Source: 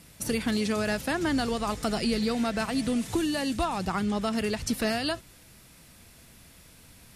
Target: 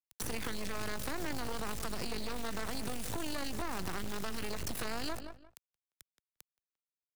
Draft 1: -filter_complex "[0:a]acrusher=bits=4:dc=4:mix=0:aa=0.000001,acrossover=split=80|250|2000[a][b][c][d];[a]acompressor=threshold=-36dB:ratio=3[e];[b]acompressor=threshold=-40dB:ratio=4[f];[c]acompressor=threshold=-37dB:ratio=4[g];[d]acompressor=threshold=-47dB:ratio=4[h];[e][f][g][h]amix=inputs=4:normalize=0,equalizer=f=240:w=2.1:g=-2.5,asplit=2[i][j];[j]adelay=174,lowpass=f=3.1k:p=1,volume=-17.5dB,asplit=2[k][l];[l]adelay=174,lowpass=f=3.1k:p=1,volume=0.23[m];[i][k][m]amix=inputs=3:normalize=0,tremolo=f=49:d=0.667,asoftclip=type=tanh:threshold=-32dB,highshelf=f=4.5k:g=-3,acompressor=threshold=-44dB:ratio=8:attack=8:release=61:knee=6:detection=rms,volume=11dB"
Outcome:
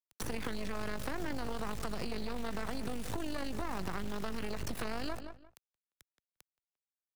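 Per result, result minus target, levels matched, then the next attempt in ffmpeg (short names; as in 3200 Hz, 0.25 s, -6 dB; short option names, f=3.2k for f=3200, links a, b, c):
8000 Hz band -5.5 dB; soft clip: distortion -7 dB
-filter_complex "[0:a]acrusher=bits=4:dc=4:mix=0:aa=0.000001,acrossover=split=80|250|2000[a][b][c][d];[a]acompressor=threshold=-36dB:ratio=3[e];[b]acompressor=threshold=-40dB:ratio=4[f];[c]acompressor=threshold=-37dB:ratio=4[g];[d]acompressor=threshold=-47dB:ratio=4[h];[e][f][g][h]amix=inputs=4:normalize=0,equalizer=f=240:w=2.1:g=-2.5,asplit=2[i][j];[j]adelay=174,lowpass=f=3.1k:p=1,volume=-17.5dB,asplit=2[k][l];[l]adelay=174,lowpass=f=3.1k:p=1,volume=0.23[m];[i][k][m]amix=inputs=3:normalize=0,tremolo=f=49:d=0.667,asoftclip=type=tanh:threshold=-32dB,highshelf=f=4.5k:g=5,acompressor=threshold=-44dB:ratio=8:attack=8:release=61:knee=6:detection=rms,volume=11dB"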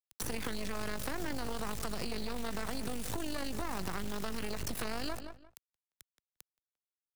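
soft clip: distortion -7 dB
-filter_complex "[0:a]acrusher=bits=4:dc=4:mix=0:aa=0.000001,acrossover=split=80|250|2000[a][b][c][d];[a]acompressor=threshold=-36dB:ratio=3[e];[b]acompressor=threshold=-40dB:ratio=4[f];[c]acompressor=threshold=-37dB:ratio=4[g];[d]acompressor=threshold=-47dB:ratio=4[h];[e][f][g][h]amix=inputs=4:normalize=0,equalizer=f=240:w=2.1:g=-2.5,asplit=2[i][j];[j]adelay=174,lowpass=f=3.1k:p=1,volume=-17.5dB,asplit=2[k][l];[l]adelay=174,lowpass=f=3.1k:p=1,volume=0.23[m];[i][k][m]amix=inputs=3:normalize=0,tremolo=f=49:d=0.667,asoftclip=type=tanh:threshold=-39.5dB,highshelf=f=4.5k:g=5,acompressor=threshold=-44dB:ratio=8:attack=8:release=61:knee=6:detection=rms,volume=11dB"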